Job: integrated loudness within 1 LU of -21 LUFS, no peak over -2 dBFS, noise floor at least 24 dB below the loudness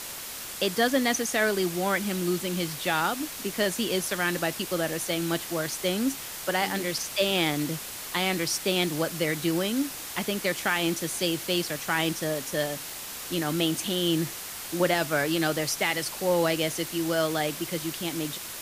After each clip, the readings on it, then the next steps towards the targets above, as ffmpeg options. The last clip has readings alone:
noise floor -38 dBFS; noise floor target -52 dBFS; loudness -27.5 LUFS; peak -10.5 dBFS; loudness target -21.0 LUFS
-> -af "afftdn=nr=14:nf=-38"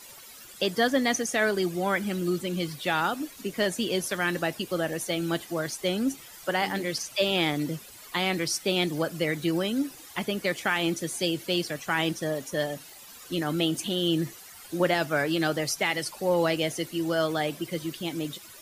noise floor -48 dBFS; noise floor target -52 dBFS
-> -af "afftdn=nr=6:nf=-48"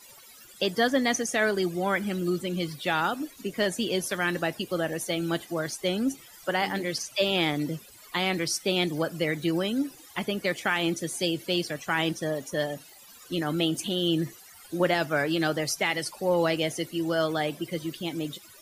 noise floor -51 dBFS; noise floor target -52 dBFS
-> -af "afftdn=nr=6:nf=-51"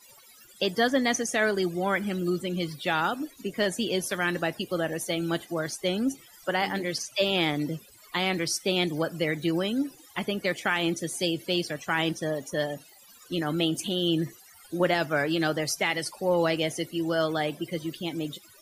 noise floor -54 dBFS; loudness -28.0 LUFS; peak -11.5 dBFS; loudness target -21.0 LUFS
-> -af "volume=7dB"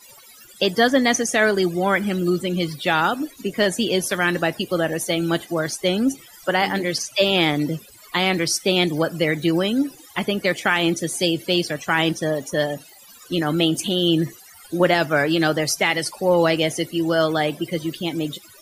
loudness -21.0 LUFS; peak -4.5 dBFS; noise floor -47 dBFS

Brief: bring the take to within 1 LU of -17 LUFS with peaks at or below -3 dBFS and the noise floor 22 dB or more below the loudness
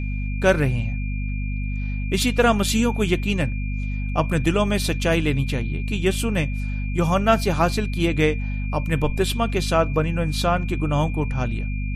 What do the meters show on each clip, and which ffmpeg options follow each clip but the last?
hum 50 Hz; harmonics up to 250 Hz; hum level -23 dBFS; steady tone 2400 Hz; tone level -37 dBFS; loudness -22.5 LUFS; peak -5.0 dBFS; loudness target -17.0 LUFS
-> -af "bandreject=f=50:t=h:w=4,bandreject=f=100:t=h:w=4,bandreject=f=150:t=h:w=4,bandreject=f=200:t=h:w=4,bandreject=f=250:t=h:w=4"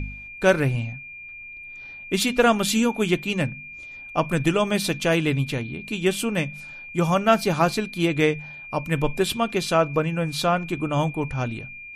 hum none; steady tone 2400 Hz; tone level -37 dBFS
-> -af "bandreject=f=2.4k:w=30"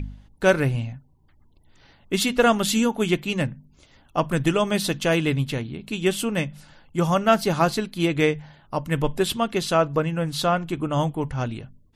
steady tone none; loudness -23.5 LUFS; peak -5.5 dBFS; loudness target -17.0 LUFS
-> -af "volume=6.5dB,alimiter=limit=-3dB:level=0:latency=1"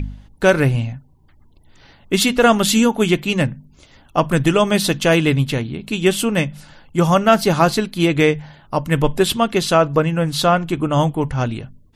loudness -17.5 LUFS; peak -3.0 dBFS; noise floor -50 dBFS

